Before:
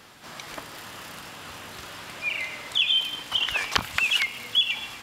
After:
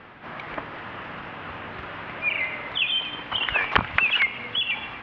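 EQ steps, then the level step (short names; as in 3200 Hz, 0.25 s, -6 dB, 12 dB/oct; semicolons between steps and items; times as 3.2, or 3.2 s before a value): LPF 2500 Hz 24 dB/oct; +6.0 dB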